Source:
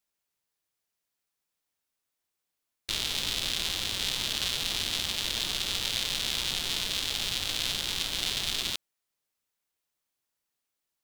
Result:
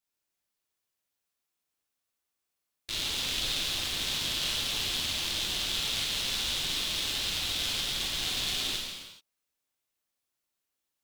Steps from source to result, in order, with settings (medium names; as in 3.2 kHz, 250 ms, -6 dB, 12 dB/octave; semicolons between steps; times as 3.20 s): gated-style reverb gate 460 ms falling, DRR -4 dB; trim -6 dB